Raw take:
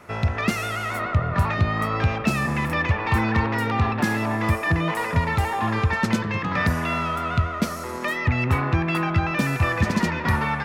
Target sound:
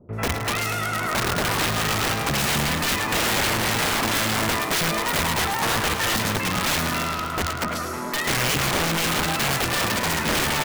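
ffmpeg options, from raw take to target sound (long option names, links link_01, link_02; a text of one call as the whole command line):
ffmpeg -i in.wav -filter_complex "[0:a]asettb=1/sr,asplit=3[link_01][link_02][link_03];[link_01]atrim=end=6.904[link_04];[link_02]atrim=start=6.9:end=7.52,asetpts=PTS-STARTPTS,afade=type=in:duration=0.004:curve=qsin,afade=type=out:start_time=0.616:duration=0.004:curve=qsin,aeval=exprs='0.299*(cos(1*acos(clip(val(0)/0.299,-1,1)))-cos(1*PI/2))+0.0299*(cos(7*acos(clip(val(0)/0.299,-1,1)))-cos(7*PI/2))':channel_layout=same[link_05];[link_03]atrim=start=7.516[link_06];[link_04][link_05]acrossfade=duration=0.004:curve1=hsin:curve2=qsin[link_07];[link_07][link_06]acrossfade=duration=0.004:curve1=qsin:curve2=hsin,acrossover=split=510|2900[link_08][link_09][link_10];[link_09]adelay=90[link_11];[link_10]adelay=130[link_12];[link_08][link_11][link_12]amix=inputs=3:normalize=0,aeval=exprs='(mod(9.44*val(0)+1,2)-1)/9.44':channel_layout=same,asplit=2[link_13][link_14];[link_14]asplit=7[link_15][link_16][link_17][link_18][link_19][link_20][link_21];[link_15]adelay=107,afreqshift=50,volume=-9.5dB[link_22];[link_16]adelay=214,afreqshift=100,volume=-14.5dB[link_23];[link_17]adelay=321,afreqshift=150,volume=-19.6dB[link_24];[link_18]adelay=428,afreqshift=200,volume=-24.6dB[link_25];[link_19]adelay=535,afreqshift=250,volume=-29.6dB[link_26];[link_20]adelay=642,afreqshift=300,volume=-34.7dB[link_27];[link_21]adelay=749,afreqshift=350,volume=-39.7dB[link_28];[link_22][link_23][link_24][link_25][link_26][link_27][link_28]amix=inputs=7:normalize=0[link_29];[link_13][link_29]amix=inputs=2:normalize=0,volume=2dB" out.wav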